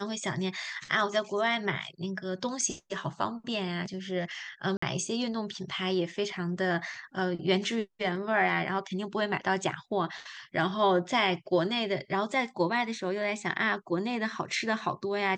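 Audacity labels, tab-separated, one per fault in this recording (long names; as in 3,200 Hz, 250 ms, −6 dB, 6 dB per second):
4.770000	4.820000	drop-out 54 ms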